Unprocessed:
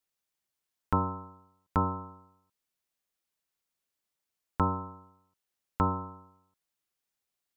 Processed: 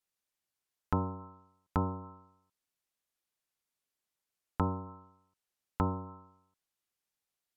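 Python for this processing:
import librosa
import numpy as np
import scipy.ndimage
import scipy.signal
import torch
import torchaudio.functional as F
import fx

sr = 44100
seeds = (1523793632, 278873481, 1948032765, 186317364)

y = fx.env_lowpass_down(x, sr, base_hz=800.0, full_db=-29.5)
y = y * 10.0 ** (-2.0 / 20.0)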